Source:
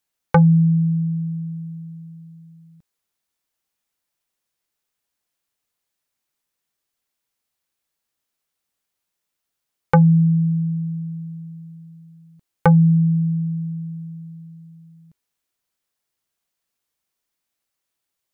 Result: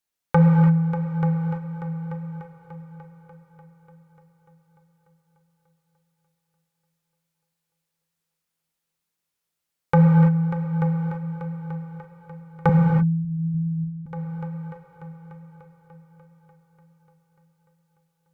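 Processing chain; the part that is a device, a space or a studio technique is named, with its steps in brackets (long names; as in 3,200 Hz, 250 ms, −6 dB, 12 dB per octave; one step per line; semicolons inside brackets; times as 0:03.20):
multi-head tape echo (echo machine with several playback heads 295 ms, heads all three, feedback 54%, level −13 dB; tape wow and flutter 13 cents)
0:12.69–0:14.06: inverse Chebyshev low-pass filter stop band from 760 Hz, stop band 70 dB
reverb whose tail is shaped and stops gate 360 ms flat, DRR 0.5 dB
level −5 dB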